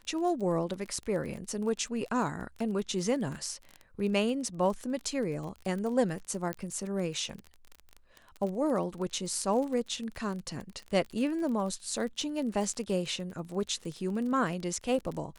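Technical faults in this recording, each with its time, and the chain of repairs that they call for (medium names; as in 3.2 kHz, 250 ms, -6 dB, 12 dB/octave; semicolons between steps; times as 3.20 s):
crackle 30 per s -36 dBFS
6.53 s: pop -18 dBFS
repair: de-click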